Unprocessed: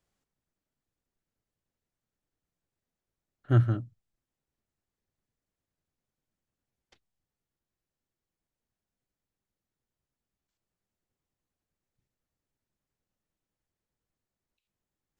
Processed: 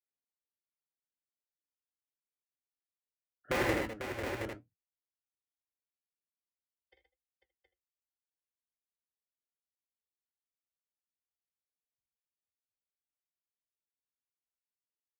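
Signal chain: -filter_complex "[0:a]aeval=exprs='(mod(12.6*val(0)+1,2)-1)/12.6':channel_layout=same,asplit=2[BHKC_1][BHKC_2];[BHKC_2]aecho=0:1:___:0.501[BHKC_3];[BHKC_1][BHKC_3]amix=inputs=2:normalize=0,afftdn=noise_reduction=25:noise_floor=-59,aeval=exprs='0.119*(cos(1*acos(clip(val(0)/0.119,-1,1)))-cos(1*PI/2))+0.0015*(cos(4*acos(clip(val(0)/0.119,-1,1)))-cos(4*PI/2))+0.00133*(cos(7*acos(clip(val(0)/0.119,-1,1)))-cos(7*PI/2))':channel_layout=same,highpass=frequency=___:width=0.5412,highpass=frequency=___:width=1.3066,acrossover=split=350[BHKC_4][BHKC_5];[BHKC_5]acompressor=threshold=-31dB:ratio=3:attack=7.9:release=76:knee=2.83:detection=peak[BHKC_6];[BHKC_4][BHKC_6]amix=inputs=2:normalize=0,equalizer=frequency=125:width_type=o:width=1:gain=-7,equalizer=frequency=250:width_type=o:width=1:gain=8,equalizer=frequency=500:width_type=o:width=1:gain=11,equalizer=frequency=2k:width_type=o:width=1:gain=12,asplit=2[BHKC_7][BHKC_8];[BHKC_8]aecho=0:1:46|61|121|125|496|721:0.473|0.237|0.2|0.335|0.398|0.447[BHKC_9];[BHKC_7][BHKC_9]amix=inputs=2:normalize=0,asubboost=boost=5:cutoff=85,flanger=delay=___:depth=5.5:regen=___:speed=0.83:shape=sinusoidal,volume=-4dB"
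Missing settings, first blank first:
78, 50, 50, 5.7, 71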